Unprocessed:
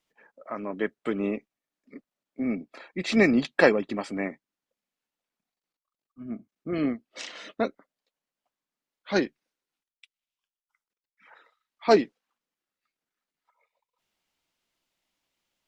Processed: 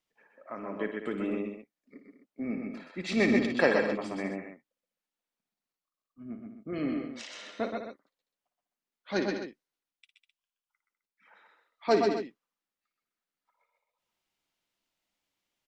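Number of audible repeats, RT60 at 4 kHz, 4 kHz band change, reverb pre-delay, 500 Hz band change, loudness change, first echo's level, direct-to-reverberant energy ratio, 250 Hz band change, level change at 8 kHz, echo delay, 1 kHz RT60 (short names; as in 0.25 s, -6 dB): 4, none, -3.5 dB, none, -3.5 dB, -4.0 dB, -9.5 dB, none, -3.5 dB, -3.5 dB, 56 ms, none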